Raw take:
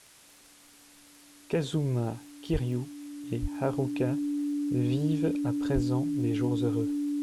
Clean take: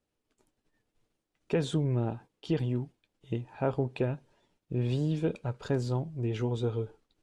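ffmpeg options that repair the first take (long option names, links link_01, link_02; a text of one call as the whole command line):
ffmpeg -i in.wav -filter_complex "[0:a]adeclick=threshold=4,bandreject=frequency=290:width=30,asplit=3[link_01][link_02][link_03];[link_01]afade=type=out:start_time=2.52:duration=0.02[link_04];[link_02]highpass=frequency=140:width=0.5412,highpass=frequency=140:width=1.3066,afade=type=in:start_time=2.52:duration=0.02,afade=type=out:start_time=2.64:duration=0.02[link_05];[link_03]afade=type=in:start_time=2.64:duration=0.02[link_06];[link_04][link_05][link_06]amix=inputs=3:normalize=0,asplit=3[link_07][link_08][link_09];[link_07]afade=type=out:start_time=3.41:duration=0.02[link_10];[link_08]highpass=frequency=140:width=0.5412,highpass=frequency=140:width=1.3066,afade=type=in:start_time=3.41:duration=0.02,afade=type=out:start_time=3.53:duration=0.02[link_11];[link_09]afade=type=in:start_time=3.53:duration=0.02[link_12];[link_10][link_11][link_12]amix=inputs=3:normalize=0,asplit=3[link_13][link_14][link_15];[link_13]afade=type=out:start_time=5.74:duration=0.02[link_16];[link_14]highpass=frequency=140:width=0.5412,highpass=frequency=140:width=1.3066,afade=type=in:start_time=5.74:duration=0.02,afade=type=out:start_time=5.86:duration=0.02[link_17];[link_15]afade=type=in:start_time=5.86:duration=0.02[link_18];[link_16][link_17][link_18]amix=inputs=3:normalize=0,afwtdn=0.002" out.wav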